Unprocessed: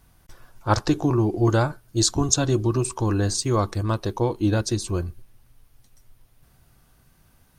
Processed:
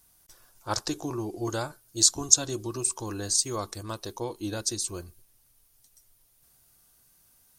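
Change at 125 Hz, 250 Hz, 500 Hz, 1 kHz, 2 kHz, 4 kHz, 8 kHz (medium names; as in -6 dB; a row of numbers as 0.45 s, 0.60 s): -15.5 dB, -11.5 dB, -10.0 dB, -9.0 dB, -8.5 dB, -0.5 dB, +3.5 dB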